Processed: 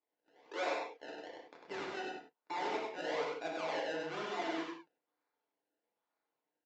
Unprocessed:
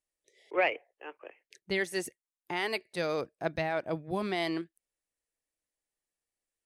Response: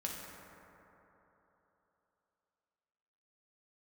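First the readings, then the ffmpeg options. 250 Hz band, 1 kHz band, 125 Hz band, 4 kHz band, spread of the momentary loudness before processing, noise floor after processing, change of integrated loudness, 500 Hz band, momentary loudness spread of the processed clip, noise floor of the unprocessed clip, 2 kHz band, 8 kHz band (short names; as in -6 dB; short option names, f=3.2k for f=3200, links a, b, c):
-8.0 dB, -2.5 dB, -17.0 dB, -6.0 dB, 18 LU, under -85 dBFS, -6.5 dB, -6.0 dB, 11 LU, under -85 dBFS, -7.5 dB, -8.5 dB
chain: -filter_complex "[0:a]asplit=2[a][b];[b]acompressor=threshold=-42dB:ratio=6,volume=-0.5dB[c];[a][c]amix=inputs=2:normalize=0,acrusher=samples=27:mix=1:aa=0.000001:lfo=1:lforange=27:lforate=1.1,aresample=16000,asoftclip=type=tanh:threshold=-27.5dB,aresample=44100,highpass=430,lowpass=4.3k,aecho=1:1:99:0.668[d];[1:a]atrim=start_sample=2205,afade=t=out:st=0.22:d=0.01,atrim=end_sample=10143,asetrate=70560,aresample=44100[e];[d][e]afir=irnorm=-1:irlink=0,volume=1dB"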